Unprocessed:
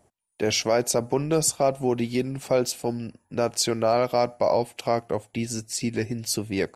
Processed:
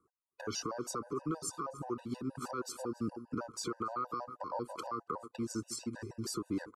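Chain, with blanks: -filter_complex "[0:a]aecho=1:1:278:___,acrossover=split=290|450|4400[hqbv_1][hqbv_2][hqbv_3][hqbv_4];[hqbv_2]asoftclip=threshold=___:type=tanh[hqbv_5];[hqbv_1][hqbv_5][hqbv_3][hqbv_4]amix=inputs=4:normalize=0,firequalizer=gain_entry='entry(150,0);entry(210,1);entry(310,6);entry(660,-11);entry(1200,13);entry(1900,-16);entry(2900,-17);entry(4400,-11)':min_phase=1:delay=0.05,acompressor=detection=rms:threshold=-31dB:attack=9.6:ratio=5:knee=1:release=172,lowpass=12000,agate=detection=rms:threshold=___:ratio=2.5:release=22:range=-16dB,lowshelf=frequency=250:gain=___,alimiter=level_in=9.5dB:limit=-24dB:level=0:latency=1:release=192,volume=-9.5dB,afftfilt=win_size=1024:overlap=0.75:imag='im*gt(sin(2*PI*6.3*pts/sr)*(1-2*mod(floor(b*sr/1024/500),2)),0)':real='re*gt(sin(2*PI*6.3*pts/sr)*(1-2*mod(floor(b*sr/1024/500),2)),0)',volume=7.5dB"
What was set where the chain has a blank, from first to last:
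0.0841, -38dB, -52dB, -10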